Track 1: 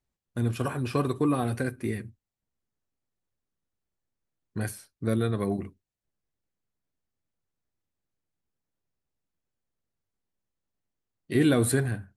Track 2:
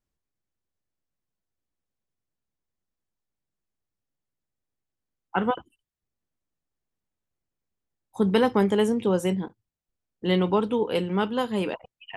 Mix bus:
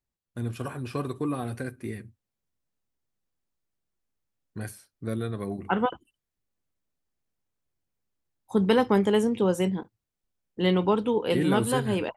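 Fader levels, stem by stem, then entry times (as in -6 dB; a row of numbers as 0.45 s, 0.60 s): -4.5 dB, -0.5 dB; 0.00 s, 0.35 s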